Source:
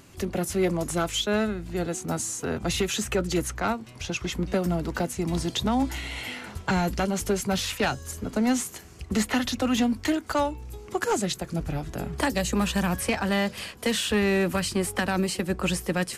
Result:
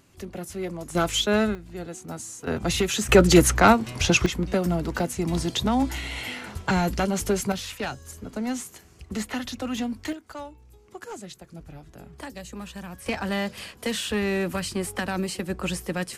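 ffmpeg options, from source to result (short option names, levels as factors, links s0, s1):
-af "asetnsamples=n=441:p=0,asendcmd='0.95 volume volume 3dB;1.55 volume volume -7dB;2.47 volume volume 2dB;3.09 volume volume 11dB;4.26 volume volume 1.5dB;7.52 volume volume -5.5dB;10.13 volume volume -13dB;13.06 volume volume -2.5dB',volume=0.422"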